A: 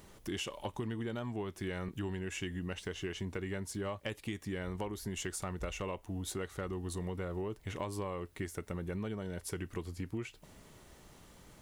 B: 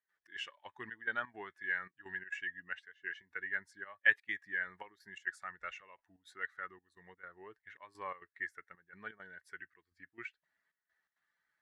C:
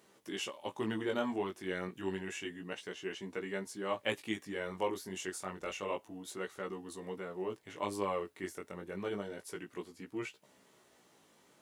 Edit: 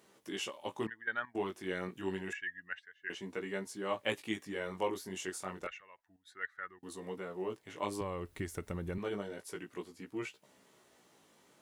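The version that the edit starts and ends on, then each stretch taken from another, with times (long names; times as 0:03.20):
C
0:00.87–0:01.35: punch in from B
0:02.33–0:03.10: punch in from B
0:05.67–0:06.83: punch in from B
0:08.01–0:08.98: punch in from A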